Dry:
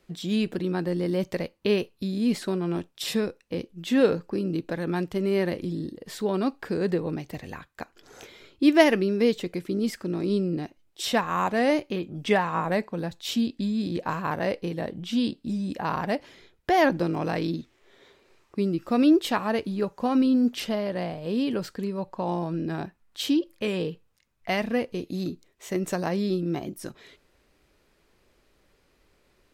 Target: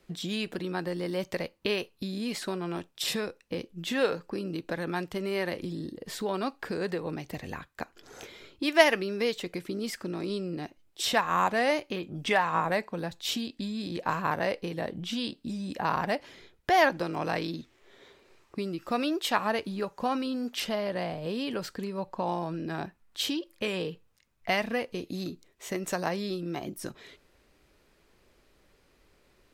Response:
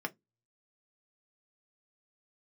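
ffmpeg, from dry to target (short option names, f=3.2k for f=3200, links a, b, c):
-filter_complex "[0:a]acrossover=split=570|2500[a][b][c];[a]acompressor=threshold=-34dB:ratio=6[d];[d][b][c]amix=inputs=3:normalize=0,aeval=exprs='0.473*(cos(1*acos(clip(val(0)/0.473,-1,1)))-cos(1*PI/2))+0.00668*(cos(7*acos(clip(val(0)/0.473,-1,1)))-cos(7*PI/2))':c=same,volume=1.5dB"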